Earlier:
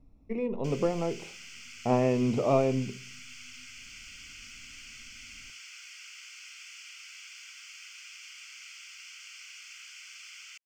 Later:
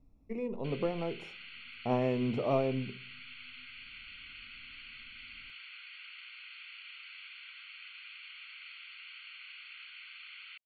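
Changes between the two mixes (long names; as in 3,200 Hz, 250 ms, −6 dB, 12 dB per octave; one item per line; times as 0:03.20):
speech −5.0 dB
background: add linear-phase brick-wall low-pass 4,500 Hz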